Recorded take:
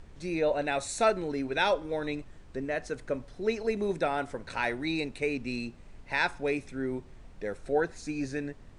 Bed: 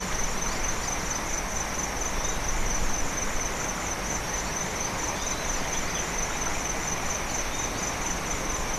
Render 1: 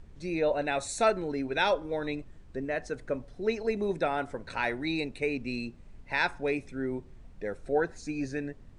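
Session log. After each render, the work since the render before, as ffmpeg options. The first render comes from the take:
-af "afftdn=nr=6:nf=-51"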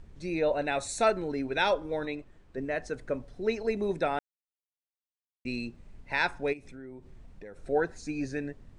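-filter_complex "[0:a]asettb=1/sr,asplit=3[a][b][c];[a]atrim=end=2.054[d];[b]atrim=start=2.05:end=2.58,asetpts=PTS-STARTPTS,afade=t=in:d=0.004:c=qsin,afade=t=out:st=0.526:d=0.004:c=qsin,bass=f=250:g=-7,treble=f=4k:g=-5[e];[c]atrim=start=2.576[f];[d][e]acrossfade=d=0.004:c1=hsin:c2=qsin[g];[g][f]acrossfade=d=0.004:c1=qsin:c2=hsin,asplit=3[h][i][j];[h]afade=t=out:st=6.52:d=0.02[k];[i]acompressor=threshold=-43dB:ratio=4:attack=3.2:release=140:knee=1:detection=peak,afade=t=in:st=6.52:d=0.02,afade=t=out:st=7.56:d=0.02[l];[j]afade=t=in:st=7.56:d=0.02[m];[k][l][m]amix=inputs=3:normalize=0,asplit=3[n][o][p];[n]atrim=end=4.19,asetpts=PTS-STARTPTS,afade=t=out:st=4.186:d=0.004:c=hsin[q];[o]atrim=start=4.19:end=5.45,asetpts=PTS-STARTPTS,volume=0[r];[p]atrim=start=5.45,asetpts=PTS-STARTPTS,afade=t=in:d=0.004:c=hsin[s];[q][r][s]concat=n=3:v=0:a=1"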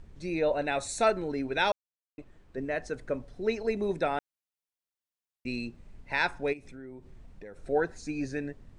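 -filter_complex "[0:a]asplit=3[a][b][c];[a]atrim=end=1.72,asetpts=PTS-STARTPTS,afade=t=out:st=1.716:d=0.004:c=hsin[d];[b]atrim=start=1.72:end=2.18,asetpts=PTS-STARTPTS,volume=0[e];[c]atrim=start=2.18,asetpts=PTS-STARTPTS,afade=t=in:d=0.004:c=hsin[f];[d][e][f]concat=n=3:v=0:a=1"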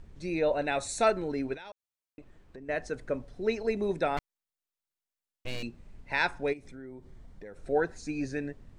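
-filter_complex "[0:a]asettb=1/sr,asplit=3[a][b][c];[a]atrim=end=1.544[d];[b]atrim=start=1.54:end=2.69,asetpts=PTS-STARTPTS,afade=t=in:d=0.004:c=qsin,afade=t=out:st=1.146:d=0.004:c=qsin,acompressor=threshold=-42dB:ratio=10:attack=3.2:release=140:knee=1:detection=peak[e];[c]atrim=start=2.686[f];[d][e]acrossfade=d=0.004:c1=hsin:c2=qsin[g];[g][f]acrossfade=d=0.004:c1=qsin:c2=hsin,asettb=1/sr,asplit=3[h][i][j];[h]atrim=end=4.174[k];[i]atrim=start=4.17:end=5.63,asetpts=PTS-STARTPTS,afade=t=in:d=0.004:c=qsin,afade=t=out:st=1.456:d=0.004:c=qsin,aeval=exprs='abs(val(0))':c=same[l];[j]atrim=start=5.626[m];[k][l]acrossfade=d=0.004:c1=hsin:c2=qsin[n];[n][m]acrossfade=d=0.004:c1=qsin:c2=hsin,asettb=1/sr,asplit=3[o][p][q];[o]atrim=end=6.494[r];[p]atrim=start=6.49:end=7.47,asetpts=PTS-STARTPTS,afade=t=in:d=0.004:c=qsin,afade=t=out:st=0.976:d=0.004:c=qsin,bandreject=f=2.6k:w=6.8[s];[q]atrim=start=7.466[t];[r][s]acrossfade=d=0.004:c1=hsin:c2=qsin[u];[u][t]acrossfade=d=0.004:c1=qsin:c2=hsin"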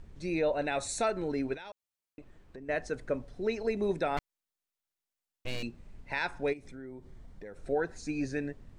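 -af "alimiter=limit=-20.5dB:level=0:latency=1:release=139"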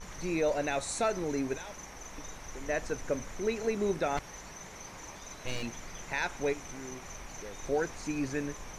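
-filter_complex "[1:a]volume=-16.5dB[a];[0:a][a]amix=inputs=2:normalize=0"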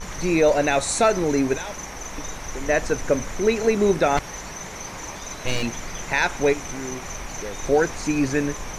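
-af "volume=11.5dB"

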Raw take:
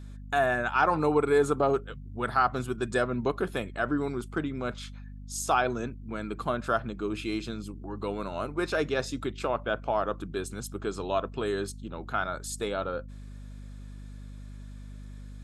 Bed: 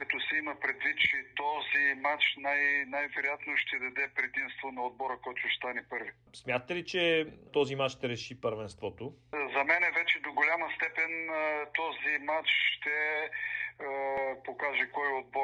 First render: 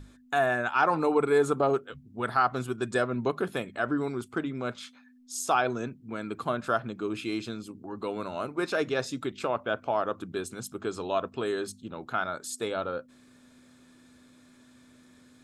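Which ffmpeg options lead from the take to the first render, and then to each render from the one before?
-af "bandreject=f=50:t=h:w=6,bandreject=f=100:t=h:w=6,bandreject=f=150:t=h:w=6,bandreject=f=200:t=h:w=6"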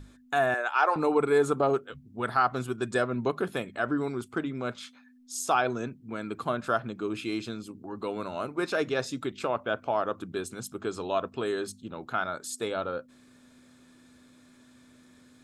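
-filter_complex "[0:a]asettb=1/sr,asplit=3[a][b][c];[a]atrim=end=0.544[d];[b]atrim=start=0.54:end=0.96,asetpts=PTS-STARTPTS,afade=t=in:d=0.004:c=qsin,afade=t=out:st=0.416:d=0.004:c=qsin,highpass=f=400:w=0.5412,highpass=f=400:w=1.3066[e];[c]atrim=start=0.956[f];[d][e]acrossfade=d=0.004:c1=hsin:c2=qsin[g];[g][f]acrossfade=d=0.004:c1=qsin:c2=hsin"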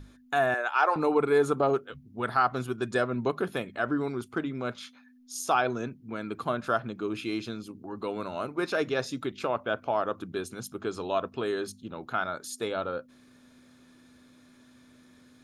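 -af "bandreject=f=7.8k:w=5.1"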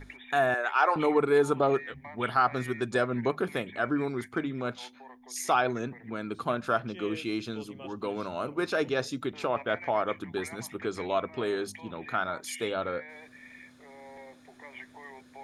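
-filter_complex "[1:a]volume=-15.5dB[a];[0:a][a]amix=inputs=2:normalize=0"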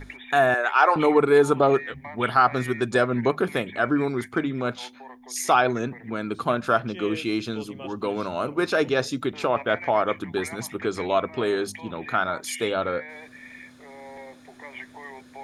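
-af "volume=6dB"

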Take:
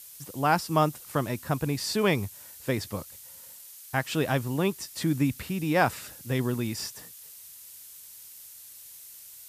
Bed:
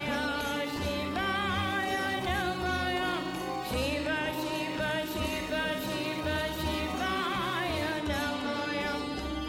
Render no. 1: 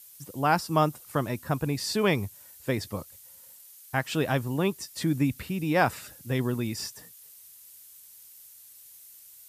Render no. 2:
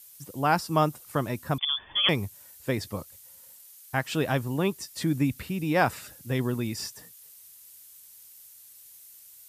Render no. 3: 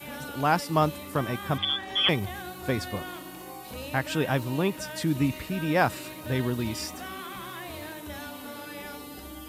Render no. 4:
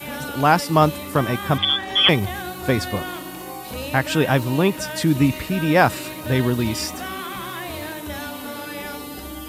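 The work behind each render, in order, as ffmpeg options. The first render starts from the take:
-af "afftdn=nr=6:nf=-48"
-filter_complex "[0:a]asettb=1/sr,asplit=3[a][b][c];[a]atrim=end=1.584[d];[b]atrim=start=1.58:end=2.09,asetpts=PTS-STARTPTS,afade=t=in:d=0.004:c=qsin,afade=t=out:st=0.506:d=0.004:c=qsin,lowpass=f=3.1k:t=q:w=0.5098,lowpass=f=3.1k:t=q:w=0.6013,lowpass=f=3.1k:t=q:w=0.9,lowpass=f=3.1k:t=q:w=2.563,afreqshift=-3600[e];[c]atrim=start=2.086[f];[d][e]acrossfade=d=0.004:c1=hsin:c2=qsin[g];[g][f]acrossfade=d=0.004:c1=qsin:c2=hsin"
-filter_complex "[1:a]volume=-8dB[a];[0:a][a]amix=inputs=2:normalize=0"
-af "volume=8dB,alimiter=limit=-3dB:level=0:latency=1"

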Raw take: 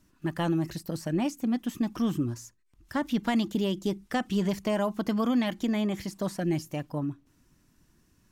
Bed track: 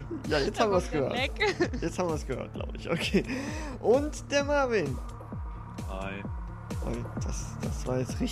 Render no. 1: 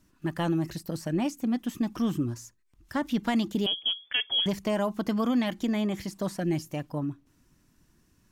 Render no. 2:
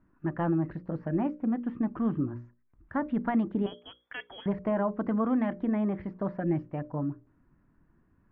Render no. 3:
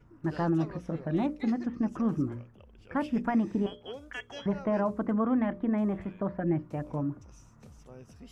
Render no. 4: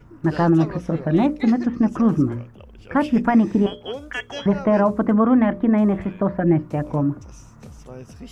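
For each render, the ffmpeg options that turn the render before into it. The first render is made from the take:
-filter_complex "[0:a]asettb=1/sr,asplit=3[a][b][c];[a]atrim=end=3.664[d];[b]atrim=start=3.66:end=4.46,asetpts=PTS-STARTPTS,afade=t=in:d=0.004:c=qsin,afade=t=out:st=0.796:d=0.004:c=qsin,lowpass=f=3k:t=q:w=0.5098,lowpass=f=3k:t=q:w=0.6013,lowpass=f=3k:t=q:w=0.9,lowpass=f=3k:t=q:w=2.563,afreqshift=-3500[e];[c]atrim=start=4.456[f];[d][e]acrossfade=d=0.004:c1=hsin:c2=qsin[g];[g][f]acrossfade=d=0.004:c1=qsin:c2=hsin"
-af "lowpass=f=1.7k:w=0.5412,lowpass=f=1.7k:w=1.3066,bandreject=f=60:t=h:w=6,bandreject=f=120:t=h:w=6,bandreject=f=180:t=h:w=6,bandreject=f=240:t=h:w=6,bandreject=f=300:t=h:w=6,bandreject=f=360:t=h:w=6,bandreject=f=420:t=h:w=6,bandreject=f=480:t=h:w=6,bandreject=f=540:t=h:w=6,bandreject=f=600:t=h:w=6"
-filter_complex "[1:a]volume=-19.5dB[a];[0:a][a]amix=inputs=2:normalize=0"
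-af "volume=11dB"

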